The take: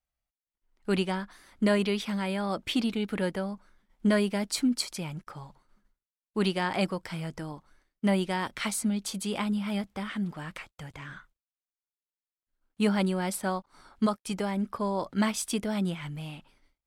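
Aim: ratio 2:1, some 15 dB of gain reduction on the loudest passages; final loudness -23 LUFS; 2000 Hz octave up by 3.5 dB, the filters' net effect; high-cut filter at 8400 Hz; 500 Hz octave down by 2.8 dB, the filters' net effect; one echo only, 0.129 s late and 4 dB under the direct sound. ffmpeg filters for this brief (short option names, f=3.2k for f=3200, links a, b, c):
-af "lowpass=8.4k,equalizer=f=500:t=o:g=-4,equalizer=f=2k:t=o:g=4.5,acompressor=threshold=-50dB:ratio=2,aecho=1:1:129:0.631,volume=19.5dB"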